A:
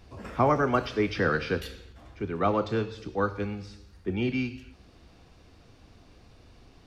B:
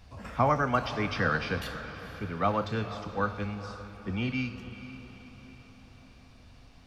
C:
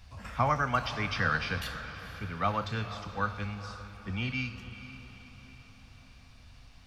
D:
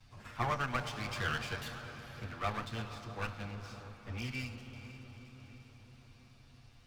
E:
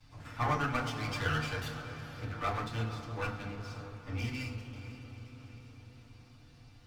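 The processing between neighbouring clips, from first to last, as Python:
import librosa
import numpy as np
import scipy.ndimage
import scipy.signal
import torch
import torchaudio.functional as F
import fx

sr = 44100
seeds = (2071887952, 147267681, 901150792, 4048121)

y1 = fx.peak_eq(x, sr, hz=370.0, db=-11.5, octaves=0.66)
y1 = fx.echo_diffused(y1, sr, ms=481, feedback_pct=51, wet_db=-12.5)
y2 = fx.peak_eq(y1, sr, hz=370.0, db=-10.0, octaves=2.2)
y2 = y2 * librosa.db_to_amplitude(2.0)
y3 = fx.lower_of_two(y2, sr, delay_ms=8.5)
y3 = fx.echo_wet_lowpass(y3, sr, ms=328, feedback_pct=71, hz=700.0, wet_db=-10)
y3 = y3 * librosa.db_to_amplitude(-5.5)
y4 = fx.rev_fdn(y3, sr, rt60_s=0.41, lf_ratio=1.5, hf_ratio=0.5, size_ms=20.0, drr_db=-0.5)
y4 = y4 * librosa.db_to_amplitude(-1.0)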